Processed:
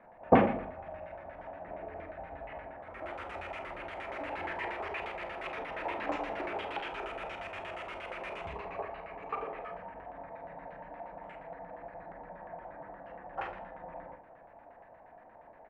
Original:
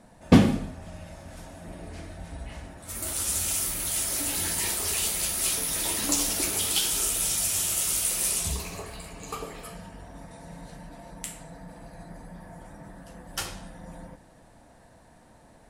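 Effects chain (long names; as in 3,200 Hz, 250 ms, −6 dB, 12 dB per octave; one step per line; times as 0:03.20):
auto-filter low-pass square 8.5 Hz 780–2,400 Hz
three-way crossover with the lows and the highs turned down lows −14 dB, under 410 Hz, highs −23 dB, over 2,000 Hz
ambience of single reflections 37 ms −10.5 dB, 51 ms −12 dB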